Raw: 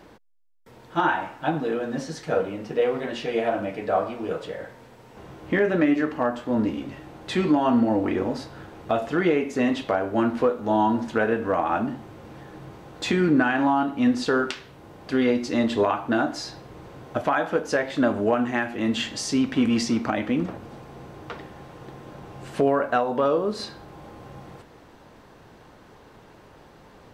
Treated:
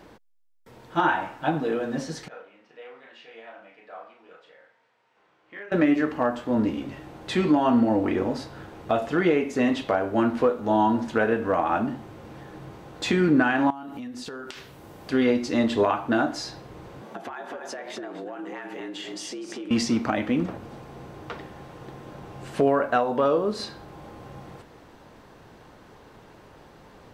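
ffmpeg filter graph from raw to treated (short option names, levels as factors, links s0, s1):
-filter_complex "[0:a]asettb=1/sr,asplit=3[s0][s1][s2];[s0]atrim=end=2.284[s3];[s1]atrim=start=2.28:end=5.72,asetpts=PTS-STARTPTS,afade=t=in:d=0.004:c=qsin,afade=t=out:st=3.436:d=0.004:c=qsin,lowpass=2000,aderivative,asplit=2[s4][s5];[s5]adelay=35,volume=0.631[s6];[s4][s6]amix=inputs=2:normalize=0,atrim=end_sample=151704[s7];[s2]atrim=start=5.716[s8];[s3][s7]acrossfade=d=0.004:c1=hsin:c2=qsin[s9];[s9][s8]acrossfade=d=0.004:c1=qsin:c2=hsin,asettb=1/sr,asplit=3[s10][s11][s12];[s10]atrim=end=13.704[s13];[s11]atrim=start=13.7:end=15.1,asetpts=PTS-STARTPTS,afade=t=in:d=0.004:c=qsin,afade=t=out:st=1.396:d=0.004:c=qsin,highshelf=f=7800:g=11.5,acompressor=threshold=0.0224:ratio=16:attack=3.2:release=140:knee=1:detection=peak[s14];[s12]atrim=start=15.096[s15];[s13][s14]acrossfade=d=0.004:c1=hsin:c2=qsin[s16];[s16][s15]acrossfade=d=0.004:c1=qsin:c2=hsin,asettb=1/sr,asplit=3[s17][s18][s19];[s17]atrim=end=17.014[s20];[s18]atrim=start=17.01:end=19.71,asetpts=PTS-STARTPTS,afade=t=in:d=0.004:c=qsin,afade=t=out:st=2.696:d=0.004:c=qsin,aecho=1:1:247:0.398,atrim=end_sample=119070,acompressor=threshold=0.0251:ratio=12:attack=3.2:release=140:knee=1:detection=peak,afreqshift=80[s21];[s19]atrim=start=19.706[s22];[s20][s21]acrossfade=d=0.004:c1=hsin:c2=qsin[s23];[s23][s22]acrossfade=d=0.004:c1=qsin:c2=hsin"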